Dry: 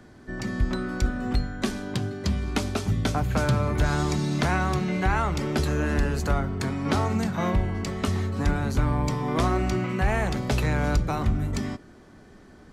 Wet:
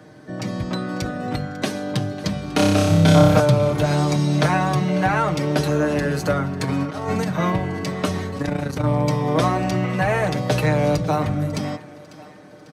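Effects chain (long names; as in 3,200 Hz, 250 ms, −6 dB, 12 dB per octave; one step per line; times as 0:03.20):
high-pass filter 83 Hz 24 dB per octave
parametric band 560 Hz +7.5 dB 0.37 octaves
notch filter 7,200 Hz, Q 9.9
comb filter 6.5 ms, depth 72%
0:02.55–0:03.40: flutter between parallel walls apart 5.2 metres, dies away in 1.1 s
0:06.64–0:07.29: compressor whose output falls as the input rises −26 dBFS, ratio −0.5
0:08.38–0:08.84: amplitude modulation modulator 28 Hz, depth 55%
feedback echo with a high-pass in the loop 547 ms, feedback 49%, high-pass 310 Hz, level −17.5 dB
level +3 dB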